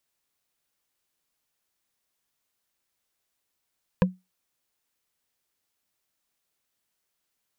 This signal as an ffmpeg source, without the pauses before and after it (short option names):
-f lavfi -i "aevalsrc='0.224*pow(10,-3*t/0.21)*sin(2*PI*184*t)+0.158*pow(10,-3*t/0.062)*sin(2*PI*507.3*t)+0.112*pow(10,-3*t/0.028)*sin(2*PI*994.3*t)+0.0794*pow(10,-3*t/0.015)*sin(2*PI*1643.7*t)+0.0562*pow(10,-3*t/0.009)*sin(2*PI*2454.6*t)':d=0.45:s=44100"